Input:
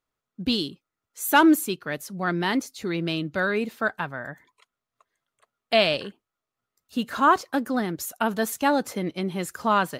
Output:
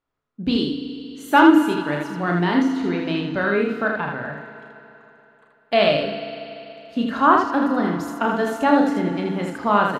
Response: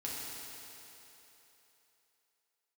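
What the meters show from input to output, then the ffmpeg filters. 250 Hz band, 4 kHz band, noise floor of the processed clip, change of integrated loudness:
+6.0 dB, 0.0 dB, −58 dBFS, +4.5 dB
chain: -filter_complex "[0:a]aemphasis=mode=reproduction:type=75fm,aecho=1:1:34|80:0.531|0.631,asplit=2[link_01][link_02];[1:a]atrim=start_sample=2205,lowpass=6700[link_03];[link_02][link_03]afir=irnorm=-1:irlink=0,volume=-7.5dB[link_04];[link_01][link_04]amix=inputs=2:normalize=0"

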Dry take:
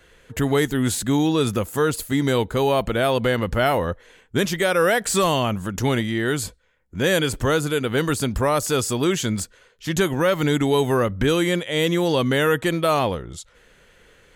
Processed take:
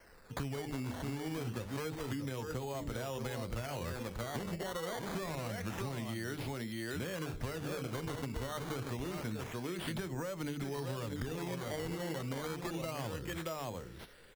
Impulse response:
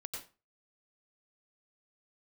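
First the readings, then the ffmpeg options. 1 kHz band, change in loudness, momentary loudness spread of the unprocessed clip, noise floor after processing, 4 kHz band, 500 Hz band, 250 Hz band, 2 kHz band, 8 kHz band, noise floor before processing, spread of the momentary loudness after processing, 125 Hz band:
−18.5 dB, −18.5 dB, 8 LU, −50 dBFS, −19.0 dB, −19.5 dB, −17.5 dB, −19.0 dB, −19.0 dB, −55 dBFS, 1 LU, −14.5 dB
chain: -filter_complex "[0:a]flanger=delay=3.3:depth=9.7:regen=74:speed=0.48:shape=sinusoidal,bandreject=frequency=50:width_type=h:width=6,bandreject=frequency=100:width_type=h:width=6,bandreject=frequency=150:width_type=h:width=6,bandreject=frequency=200:width_type=h:width=6,bandreject=frequency=250:width_type=h:width=6,bandreject=frequency=300:width_type=h:width=6,bandreject=frequency=350:width_type=h:width=6,bandreject=frequency=400:width_type=h:width=6,bandreject=frequency=450:width_type=h:width=6,bandreject=frequency=500:width_type=h:width=6,aecho=1:1:628:0.398,acrossover=split=360|1800|3600[link_01][link_02][link_03][link_04];[link_04]alimiter=level_in=3dB:limit=-24dB:level=0:latency=1:release=475,volume=-3dB[link_05];[link_01][link_02][link_03][link_05]amix=inputs=4:normalize=0,acrossover=split=140[link_06][link_07];[link_07]acompressor=threshold=-31dB:ratio=6[link_08];[link_06][link_08]amix=inputs=2:normalize=0,acrusher=samples=12:mix=1:aa=0.000001:lfo=1:lforange=12:lforate=0.27,acompressor=threshold=-34dB:ratio=6,volume=-1.5dB"

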